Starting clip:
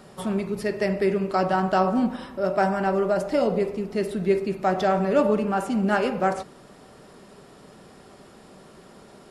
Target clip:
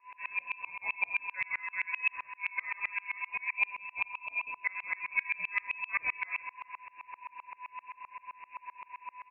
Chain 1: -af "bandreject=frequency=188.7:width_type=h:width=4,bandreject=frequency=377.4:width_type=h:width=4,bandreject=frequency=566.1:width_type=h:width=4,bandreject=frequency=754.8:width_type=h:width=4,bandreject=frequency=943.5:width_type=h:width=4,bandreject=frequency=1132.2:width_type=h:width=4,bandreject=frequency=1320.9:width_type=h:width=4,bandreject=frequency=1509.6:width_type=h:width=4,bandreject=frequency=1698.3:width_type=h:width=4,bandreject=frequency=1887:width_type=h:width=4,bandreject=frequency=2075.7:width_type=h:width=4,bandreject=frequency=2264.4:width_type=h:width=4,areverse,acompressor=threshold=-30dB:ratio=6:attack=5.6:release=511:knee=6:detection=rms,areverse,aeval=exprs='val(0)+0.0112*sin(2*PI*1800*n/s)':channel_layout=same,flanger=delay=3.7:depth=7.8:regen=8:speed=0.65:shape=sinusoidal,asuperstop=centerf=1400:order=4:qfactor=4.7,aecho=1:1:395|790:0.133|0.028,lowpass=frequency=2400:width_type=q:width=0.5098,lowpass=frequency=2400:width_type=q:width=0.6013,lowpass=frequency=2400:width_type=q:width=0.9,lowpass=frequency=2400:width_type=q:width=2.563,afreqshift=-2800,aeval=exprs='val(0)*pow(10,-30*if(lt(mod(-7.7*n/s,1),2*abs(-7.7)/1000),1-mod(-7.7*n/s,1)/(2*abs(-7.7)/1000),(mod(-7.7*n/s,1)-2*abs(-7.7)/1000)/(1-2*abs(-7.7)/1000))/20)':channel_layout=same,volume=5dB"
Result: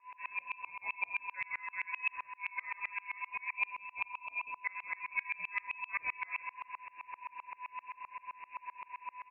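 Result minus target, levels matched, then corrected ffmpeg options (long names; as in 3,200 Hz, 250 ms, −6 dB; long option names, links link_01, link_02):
downward compressor: peak gain reduction +5 dB
-af "bandreject=frequency=188.7:width_type=h:width=4,bandreject=frequency=377.4:width_type=h:width=4,bandreject=frequency=566.1:width_type=h:width=4,bandreject=frequency=754.8:width_type=h:width=4,bandreject=frequency=943.5:width_type=h:width=4,bandreject=frequency=1132.2:width_type=h:width=4,bandreject=frequency=1320.9:width_type=h:width=4,bandreject=frequency=1509.6:width_type=h:width=4,bandreject=frequency=1698.3:width_type=h:width=4,bandreject=frequency=1887:width_type=h:width=4,bandreject=frequency=2075.7:width_type=h:width=4,bandreject=frequency=2264.4:width_type=h:width=4,areverse,acompressor=threshold=-24dB:ratio=6:attack=5.6:release=511:knee=6:detection=rms,areverse,aeval=exprs='val(0)+0.0112*sin(2*PI*1800*n/s)':channel_layout=same,flanger=delay=3.7:depth=7.8:regen=8:speed=0.65:shape=sinusoidal,asuperstop=centerf=1400:order=4:qfactor=4.7,aecho=1:1:395|790:0.133|0.028,lowpass=frequency=2400:width_type=q:width=0.5098,lowpass=frequency=2400:width_type=q:width=0.6013,lowpass=frequency=2400:width_type=q:width=0.9,lowpass=frequency=2400:width_type=q:width=2.563,afreqshift=-2800,aeval=exprs='val(0)*pow(10,-30*if(lt(mod(-7.7*n/s,1),2*abs(-7.7)/1000),1-mod(-7.7*n/s,1)/(2*abs(-7.7)/1000),(mod(-7.7*n/s,1)-2*abs(-7.7)/1000)/(1-2*abs(-7.7)/1000))/20)':channel_layout=same,volume=5dB"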